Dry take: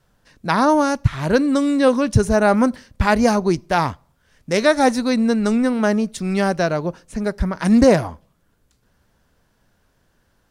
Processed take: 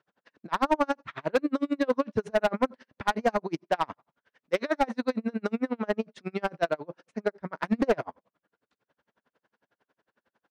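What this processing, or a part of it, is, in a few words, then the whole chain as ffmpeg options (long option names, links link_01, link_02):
helicopter radio: -af "highpass=310,lowpass=2800,aeval=exprs='val(0)*pow(10,-38*(0.5-0.5*cos(2*PI*11*n/s))/20)':channel_layout=same,asoftclip=type=hard:threshold=-16.5dB"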